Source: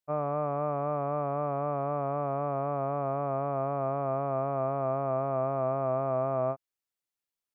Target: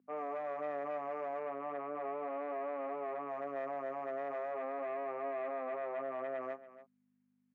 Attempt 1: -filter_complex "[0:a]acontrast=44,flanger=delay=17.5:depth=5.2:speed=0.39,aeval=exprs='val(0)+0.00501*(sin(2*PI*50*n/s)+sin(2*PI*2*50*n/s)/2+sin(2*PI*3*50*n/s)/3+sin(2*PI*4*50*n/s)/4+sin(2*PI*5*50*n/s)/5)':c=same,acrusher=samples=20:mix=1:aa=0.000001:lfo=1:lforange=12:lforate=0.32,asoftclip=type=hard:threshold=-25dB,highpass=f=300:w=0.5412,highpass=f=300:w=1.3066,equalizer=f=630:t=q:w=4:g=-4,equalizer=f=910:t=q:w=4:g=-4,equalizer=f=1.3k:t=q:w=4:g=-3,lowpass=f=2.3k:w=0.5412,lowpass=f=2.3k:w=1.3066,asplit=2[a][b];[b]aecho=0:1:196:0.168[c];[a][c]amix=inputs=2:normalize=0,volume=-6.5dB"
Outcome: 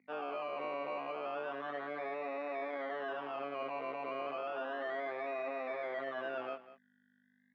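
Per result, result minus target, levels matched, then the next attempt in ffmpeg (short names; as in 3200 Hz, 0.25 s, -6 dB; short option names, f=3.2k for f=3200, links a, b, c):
decimation with a swept rate: distortion +15 dB; echo 86 ms early
-filter_complex "[0:a]acontrast=44,flanger=delay=17.5:depth=5.2:speed=0.39,aeval=exprs='val(0)+0.00501*(sin(2*PI*50*n/s)+sin(2*PI*2*50*n/s)/2+sin(2*PI*3*50*n/s)/3+sin(2*PI*4*50*n/s)/4+sin(2*PI*5*50*n/s)/5)':c=same,acrusher=samples=5:mix=1:aa=0.000001:lfo=1:lforange=3:lforate=0.32,asoftclip=type=hard:threshold=-25dB,highpass=f=300:w=0.5412,highpass=f=300:w=1.3066,equalizer=f=630:t=q:w=4:g=-4,equalizer=f=910:t=q:w=4:g=-4,equalizer=f=1.3k:t=q:w=4:g=-3,lowpass=f=2.3k:w=0.5412,lowpass=f=2.3k:w=1.3066,asplit=2[a][b];[b]aecho=0:1:196:0.168[c];[a][c]amix=inputs=2:normalize=0,volume=-6.5dB"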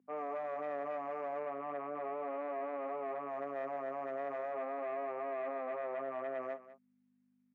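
echo 86 ms early
-filter_complex "[0:a]acontrast=44,flanger=delay=17.5:depth=5.2:speed=0.39,aeval=exprs='val(0)+0.00501*(sin(2*PI*50*n/s)+sin(2*PI*2*50*n/s)/2+sin(2*PI*3*50*n/s)/3+sin(2*PI*4*50*n/s)/4+sin(2*PI*5*50*n/s)/5)':c=same,acrusher=samples=5:mix=1:aa=0.000001:lfo=1:lforange=3:lforate=0.32,asoftclip=type=hard:threshold=-25dB,highpass=f=300:w=0.5412,highpass=f=300:w=1.3066,equalizer=f=630:t=q:w=4:g=-4,equalizer=f=910:t=q:w=4:g=-4,equalizer=f=1.3k:t=q:w=4:g=-3,lowpass=f=2.3k:w=0.5412,lowpass=f=2.3k:w=1.3066,asplit=2[a][b];[b]aecho=0:1:282:0.168[c];[a][c]amix=inputs=2:normalize=0,volume=-6.5dB"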